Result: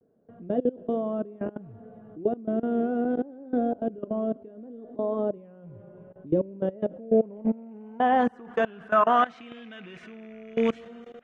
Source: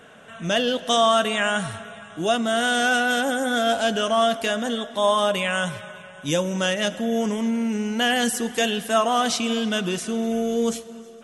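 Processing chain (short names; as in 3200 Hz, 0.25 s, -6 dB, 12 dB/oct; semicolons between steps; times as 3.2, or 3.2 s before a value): rattling part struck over -31 dBFS, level -26 dBFS; bell 120 Hz +2.5 dB 0.34 oct; level quantiser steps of 22 dB; low-pass sweep 380 Hz -> 2100 Hz, 6.56–9.59; vibrato 0.65 Hz 62 cents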